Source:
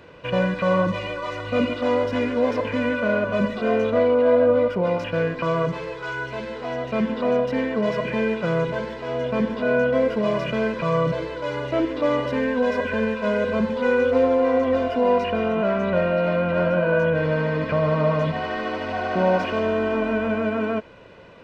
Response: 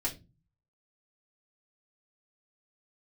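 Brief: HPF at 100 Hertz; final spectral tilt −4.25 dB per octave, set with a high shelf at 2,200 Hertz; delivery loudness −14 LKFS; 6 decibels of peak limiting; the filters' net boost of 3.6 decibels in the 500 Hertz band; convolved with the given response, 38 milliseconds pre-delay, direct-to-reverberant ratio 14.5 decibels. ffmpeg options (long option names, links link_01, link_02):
-filter_complex "[0:a]highpass=100,equalizer=frequency=500:width_type=o:gain=4.5,highshelf=frequency=2200:gain=-8.5,alimiter=limit=-11.5dB:level=0:latency=1,asplit=2[link_01][link_02];[1:a]atrim=start_sample=2205,adelay=38[link_03];[link_02][link_03]afir=irnorm=-1:irlink=0,volume=-18dB[link_04];[link_01][link_04]amix=inputs=2:normalize=0,volume=6.5dB"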